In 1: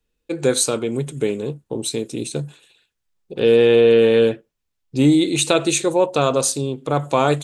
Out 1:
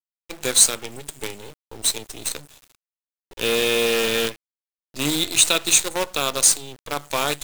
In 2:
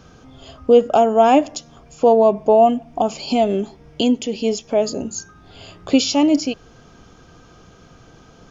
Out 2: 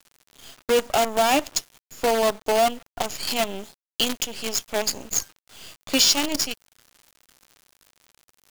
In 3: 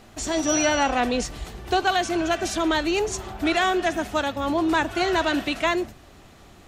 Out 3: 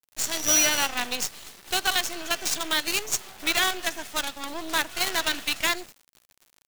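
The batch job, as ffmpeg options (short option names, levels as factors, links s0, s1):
-filter_complex "[0:a]tiltshelf=f=1400:g=-9,acrossover=split=130|6800[s0][s1][s2];[s0]acompressor=threshold=0.001:ratio=5[s3];[s3][s1][s2]amix=inputs=3:normalize=0,acrusher=bits=4:dc=4:mix=0:aa=0.000001,volume=0.75"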